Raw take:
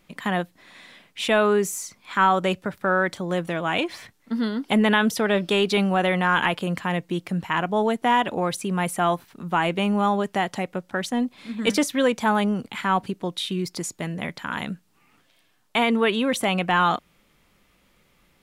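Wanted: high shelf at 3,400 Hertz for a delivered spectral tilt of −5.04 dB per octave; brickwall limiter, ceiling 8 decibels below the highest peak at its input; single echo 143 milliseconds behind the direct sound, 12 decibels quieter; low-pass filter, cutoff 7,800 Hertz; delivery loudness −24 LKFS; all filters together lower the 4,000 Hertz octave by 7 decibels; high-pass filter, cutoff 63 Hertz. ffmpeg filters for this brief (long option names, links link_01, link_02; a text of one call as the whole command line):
ffmpeg -i in.wav -af "highpass=63,lowpass=7800,highshelf=frequency=3400:gain=-4.5,equalizer=frequency=4000:width_type=o:gain=-7,alimiter=limit=-15.5dB:level=0:latency=1,aecho=1:1:143:0.251,volume=2.5dB" out.wav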